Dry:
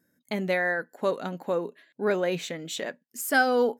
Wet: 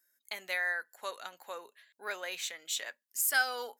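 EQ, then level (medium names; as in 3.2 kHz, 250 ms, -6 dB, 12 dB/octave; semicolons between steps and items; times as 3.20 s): high-pass 1.1 kHz 12 dB/octave; treble shelf 4.6 kHz +9.5 dB; -4.5 dB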